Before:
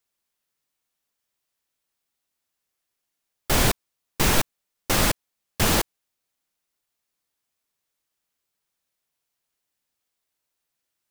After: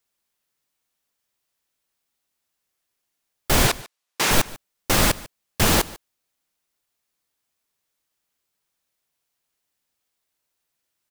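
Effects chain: 3.67–4.31 weighting filter A; on a send: echo 0.146 s -20.5 dB; on the sum: gain +2.5 dB

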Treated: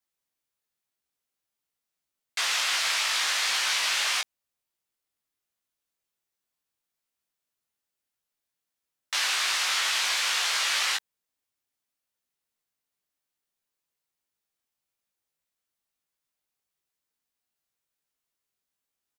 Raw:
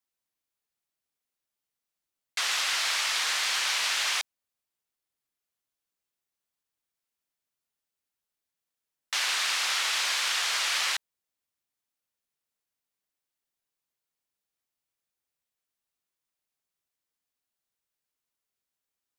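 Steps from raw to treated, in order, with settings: doubler 18 ms -4 dB

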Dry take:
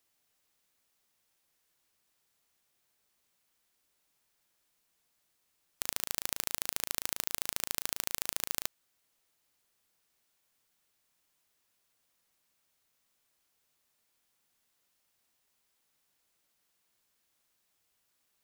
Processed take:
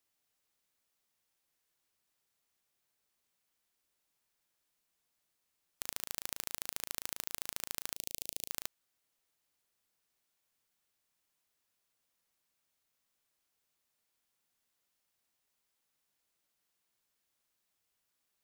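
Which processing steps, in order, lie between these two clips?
7.96–8.51 Butterworth band-stop 1300 Hz, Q 0.66; gain -5.5 dB

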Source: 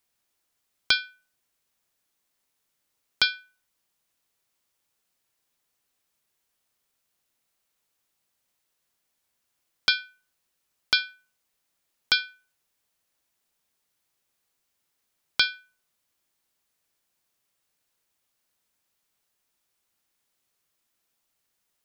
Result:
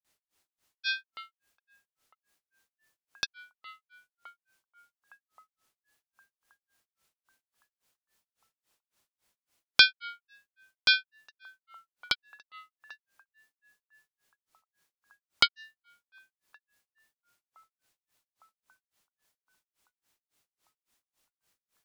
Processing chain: narrowing echo 0.371 s, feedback 84%, band-pass 990 Hz, level -21 dB; grains 0.212 s, grains 3.6/s, pitch spread up and down by 3 st; gain +5 dB

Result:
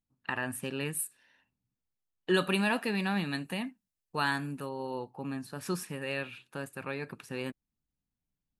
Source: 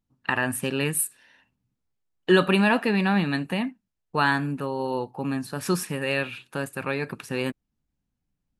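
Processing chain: 2.34–4.69 high shelf 4400 Hz +11 dB; gain -9 dB

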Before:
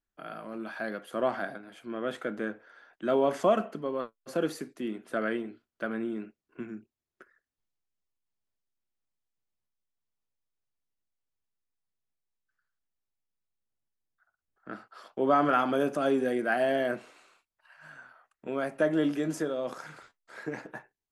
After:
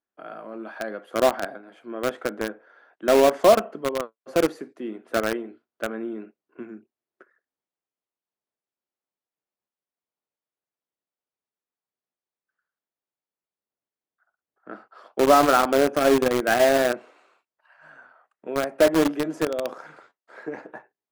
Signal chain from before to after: HPF 460 Hz 12 dB/oct; tilt -4 dB/oct; in parallel at -3.5 dB: bit-crush 4-bit; on the sum: gain +3 dB

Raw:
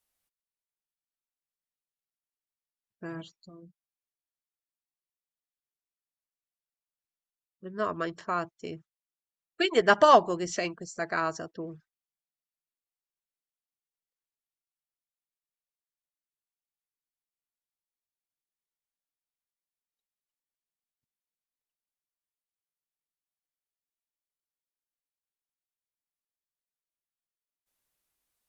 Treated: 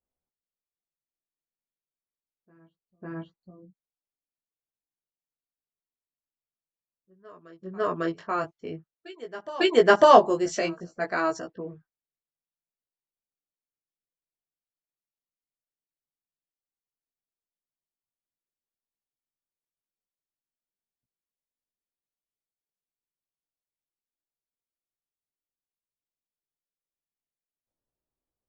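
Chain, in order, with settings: dynamic EQ 400 Hz, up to +5 dB, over -35 dBFS, Q 0.74; low-pass opened by the level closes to 620 Hz, open at -26 dBFS; chorus 0.53 Hz, delay 15.5 ms, depth 4.1 ms; reverse echo 0.55 s -21.5 dB; gain +4 dB

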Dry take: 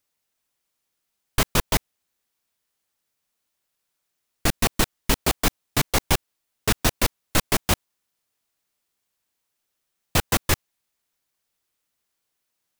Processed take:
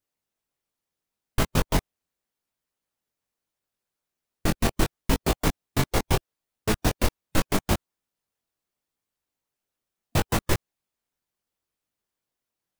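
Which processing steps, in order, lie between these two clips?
chorus 0.76 Hz, delay 18 ms, depth 4.8 ms; harmonic-percussive split harmonic -6 dB; tilt shelf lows +4 dB, about 1100 Hz

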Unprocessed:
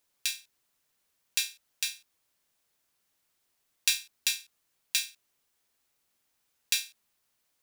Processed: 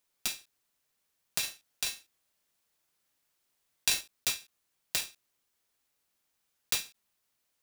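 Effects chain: block floating point 3-bit; 1.39–4.01 doubler 39 ms -5.5 dB; gain -3 dB

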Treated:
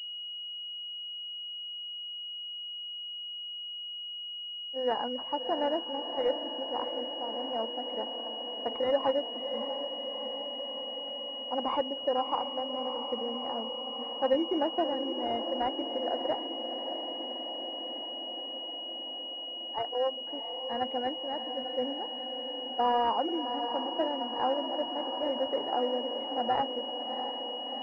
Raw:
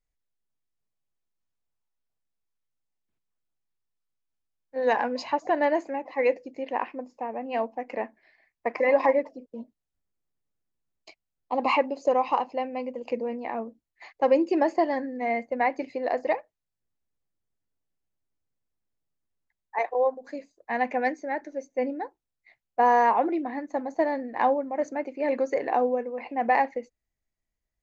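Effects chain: diffused feedback echo 0.671 s, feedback 73%, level -8 dB; pulse-width modulation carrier 2900 Hz; gain -6 dB

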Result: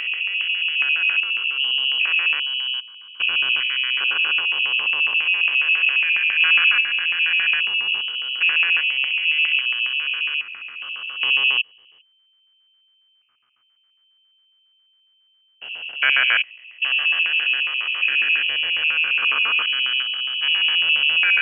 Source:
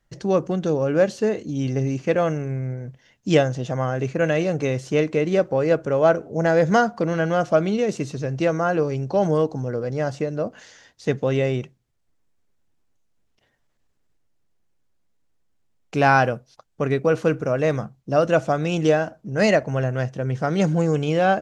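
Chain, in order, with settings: stepped spectrum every 0.4 s; LFO low-pass square 7.3 Hz 530–1800 Hz; inverted band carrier 3100 Hz; gain +1.5 dB

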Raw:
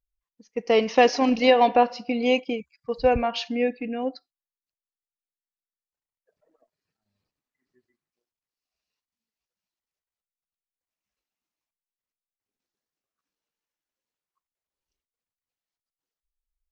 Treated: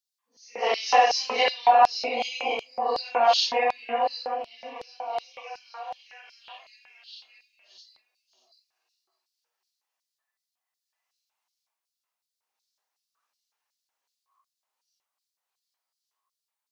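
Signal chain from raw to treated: phase scrambler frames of 0.2 s; compressor, threshold -23 dBFS, peak gain reduction 11 dB; delay with a stepping band-pass 0.624 s, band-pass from 310 Hz, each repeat 0.7 oct, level -5 dB; LFO high-pass square 2.7 Hz 840–4500 Hz; gain +6.5 dB

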